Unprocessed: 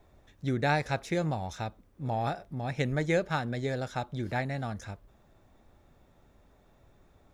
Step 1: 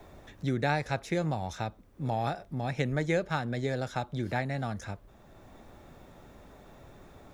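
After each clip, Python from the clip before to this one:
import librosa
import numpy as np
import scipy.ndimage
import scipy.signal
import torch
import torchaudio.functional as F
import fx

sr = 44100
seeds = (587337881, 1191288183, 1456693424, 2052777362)

y = fx.band_squash(x, sr, depth_pct=40)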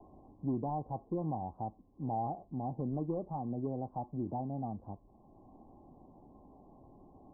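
y = np.clip(x, -10.0 ** (-24.0 / 20.0), 10.0 ** (-24.0 / 20.0))
y = scipy.signal.sosfilt(scipy.signal.cheby1(6, 9, 1100.0, 'lowpass', fs=sr, output='sos'), y)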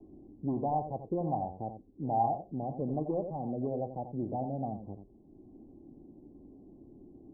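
y = x + 10.0 ** (-8.0 / 20.0) * np.pad(x, (int(88 * sr / 1000.0), 0))[:len(x)]
y = fx.envelope_lowpass(y, sr, base_hz=320.0, top_hz=1100.0, q=2.4, full_db=-27.0, direction='up')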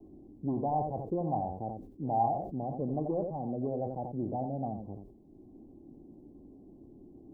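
y = fx.sustainer(x, sr, db_per_s=74.0)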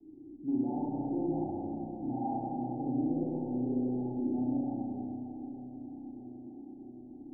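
y = fx.reverse_delay_fb(x, sr, ms=312, feedback_pct=80, wet_db=-13.5)
y = fx.formant_cascade(y, sr, vowel='u')
y = fx.rev_spring(y, sr, rt60_s=2.3, pass_ms=(32, 57), chirp_ms=45, drr_db=-6.5)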